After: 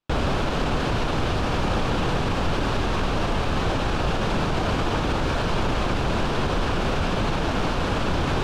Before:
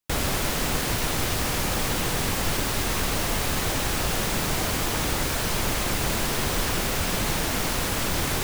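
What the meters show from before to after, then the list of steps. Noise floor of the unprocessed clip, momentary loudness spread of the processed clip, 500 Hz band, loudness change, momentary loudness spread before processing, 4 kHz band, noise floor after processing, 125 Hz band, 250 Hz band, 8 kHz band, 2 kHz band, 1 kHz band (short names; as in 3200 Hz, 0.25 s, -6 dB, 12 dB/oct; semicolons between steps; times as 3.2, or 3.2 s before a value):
-27 dBFS, 1 LU, +4.5 dB, +0.5 dB, 0 LU, -3.0 dB, -25 dBFS, +4.0 dB, +4.5 dB, -14.0 dB, -0.5 dB, +4.0 dB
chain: limiter -19.5 dBFS, peak gain reduction 7.5 dB; LPF 2700 Hz 12 dB/oct; bell 2000 Hz -8.5 dB 0.44 oct; gain +8 dB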